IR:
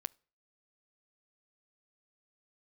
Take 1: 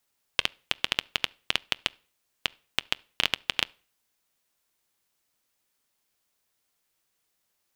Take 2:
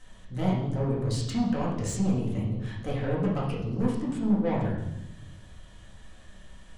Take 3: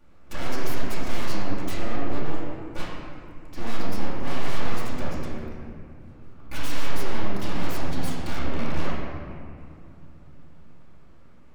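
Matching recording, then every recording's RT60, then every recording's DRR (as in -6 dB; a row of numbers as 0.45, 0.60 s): 1; 0.40, 0.90, 2.4 s; 19.0, -5.5, -7.5 dB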